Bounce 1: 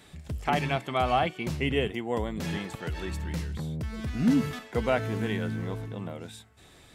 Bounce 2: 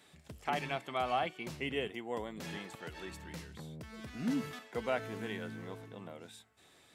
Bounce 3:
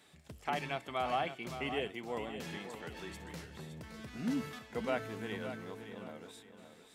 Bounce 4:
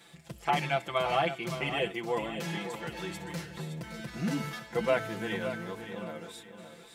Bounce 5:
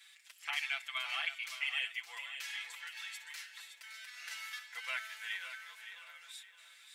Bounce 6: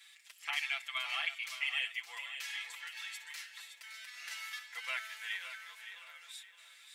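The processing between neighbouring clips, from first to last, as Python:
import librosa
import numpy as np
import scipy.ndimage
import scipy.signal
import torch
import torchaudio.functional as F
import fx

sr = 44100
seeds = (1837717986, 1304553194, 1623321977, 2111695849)

y1 = fx.highpass(x, sr, hz=300.0, slope=6)
y1 = y1 * librosa.db_to_amplitude(-7.0)
y2 = fx.echo_feedback(y1, sr, ms=566, feedback_pct=33, wet_db=-10.0)
y2 = y2 * librosa.db_to_amplitude(-1.0)
y3 = fx.peak_eq(y2, sr, hz=290.0, db=-3.0, octaves=0.34)
y3 = y3 + 0.99 * np.pad(y3, (int(5.9 * sr / 1000.0), 0))[:len(y3)]
y3 = y3 * librosa.db_to_amplitude(4.5)
y4 = fx.ladder_highpass(y3, sr, hz=1500.0, resonance_pct=25)
y4 = y4 * librosa.db_to_amplitude(3.5)
y5 = fx.notch(y4, sr, hz=1500.0, q=20.0)
y5 = y5 * librosa.db_to_amplitude(1.0)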